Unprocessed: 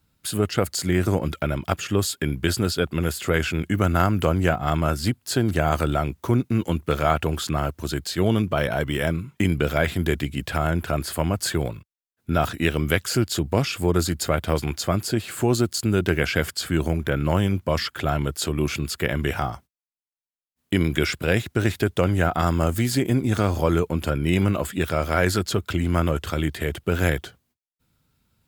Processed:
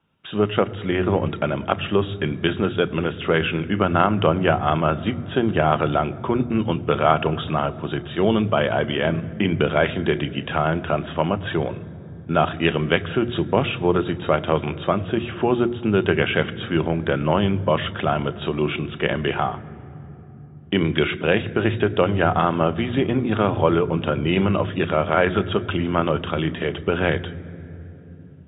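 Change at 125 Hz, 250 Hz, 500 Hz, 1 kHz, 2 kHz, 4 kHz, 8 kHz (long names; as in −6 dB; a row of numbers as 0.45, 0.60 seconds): −1.5 dB, +2.0 dB, +4.0 dB, +4.5 dB, +2.0 dB, +0.5 dB, below −40 dB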